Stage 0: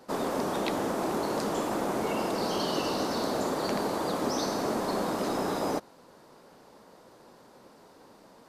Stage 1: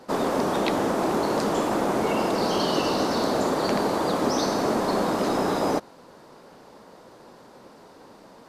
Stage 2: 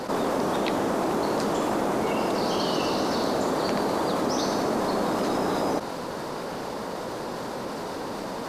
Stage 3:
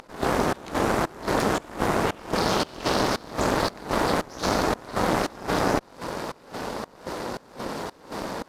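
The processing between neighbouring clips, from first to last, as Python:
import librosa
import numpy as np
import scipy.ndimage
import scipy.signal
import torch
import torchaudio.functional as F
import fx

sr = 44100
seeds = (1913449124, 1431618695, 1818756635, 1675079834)

y1 = fx.high_shelf(x, sr, hz=8600.0, db=-6.5)
y1 = F.gain(torch.from_numpy(y1), 6.0).numpy()
y2 = fx.env_flatten(y1, sr, amount_pct=70)
y2 = F.gain(torch.from_numpy(y2), -3.5).numpy()
y3 = fx.cheby_harmonics(y2, sr, harmonics=(4,), levels_db=(-6,), full_scale_db=-11.5)
y3 = fx.volume_shaper(y3, sr, bpm=114, per_beat=1, depth_db=-23, release_ms=222.0, shape='slow start')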